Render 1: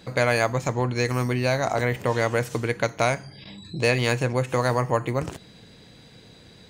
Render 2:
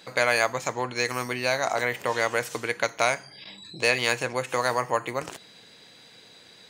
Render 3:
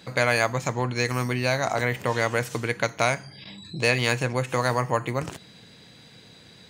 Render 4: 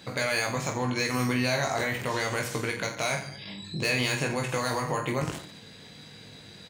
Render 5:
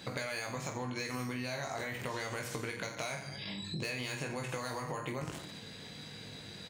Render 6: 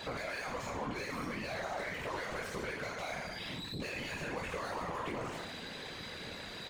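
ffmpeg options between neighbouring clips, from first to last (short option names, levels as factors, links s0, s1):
-af "highpass=f=870:p=1,volume=1.33"
-af "bass=f=250:g=13,treble=f=4000:g=-1"
-filter_complex "[0:a]acrossover=split=3000[s0][s1];[s0]alimiter=limit=0.112:level=0:latency=1:release=39[s2];[s1]asoftclip=type=tanh:threshold=0.0531[s3];[s2][s3]amix=inputs=2:normalize=0,aecho=1:1:20|48|87.2|142.1|218.9:0.631|0.398|0.251|0.158|0.1"
-af "acompressor=threshold=0.0158:ratio=5"
-filter_complex "[0:a]aeval=exprs='0.0841*sin(PI/2*2.24*val(0)/0.0841)':c=same,asplit=2[s0][s1];[s1]highpass=f=720:p=1,volume=11.2,asoftclip=type=tanh:threshold=0.0841[s2];[s0][s2]amix=inputs=2:normalize=0,lowpass=f=1700:p=1,volume=0.501,afftfilt=real='hypot(re,im)*cos(2*PI*random(0))':imag='hypot(re,im)*sin(2*PI*random(1))':win_size=512:overlap=0.75,volume=0.596"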